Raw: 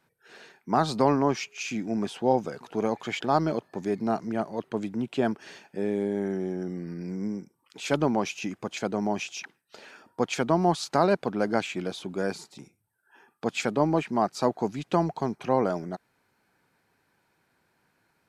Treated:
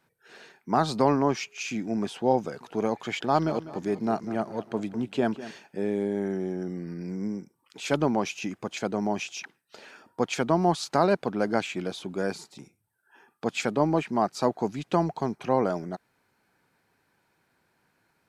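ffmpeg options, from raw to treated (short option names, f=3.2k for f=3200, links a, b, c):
-filter_complex "[0:a]asettb=1/sr,asplit=3[a][b][c];[a]atrim=end=3.154[d];[b]atrim=start=3.15:end=5.51,asetpts=PTS-STARTPTS,afade=t=in:d=0.004:c=qsin,afade=t=out:st=2.356:d=0.004:c=qsin,aecho=1:1:199|398|597|796:0.178|0.08|0.036|0.0162,atrim=end_sample=104076[e];[c]atrim=start=5.506[f];[d][e]acrossfade=d=0.004:c1=hsin:c2=qsin[g];[g][f]acrossfade=d=0.004:c1=qsin:c2=hsin"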